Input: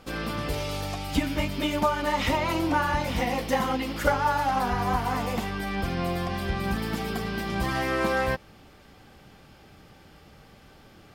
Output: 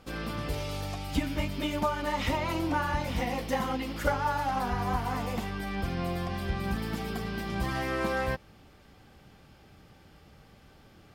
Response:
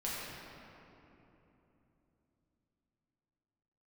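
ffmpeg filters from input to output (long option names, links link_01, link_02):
-af "equalizer=frequency=69:width=0.43:gain=3.5,volume=-5dB"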